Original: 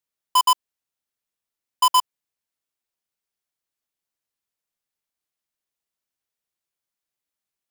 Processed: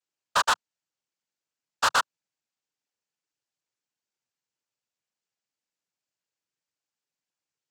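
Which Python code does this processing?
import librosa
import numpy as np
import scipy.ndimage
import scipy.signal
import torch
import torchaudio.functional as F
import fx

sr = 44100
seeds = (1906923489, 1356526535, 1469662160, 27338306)

y = fx.noise_vocoder(x, sr, seeds[0], bands=8)
y = 10.0 ** (-17.0 / 20.0) * np.tanh(y / 10.0 ** (-17.0 / 20.0))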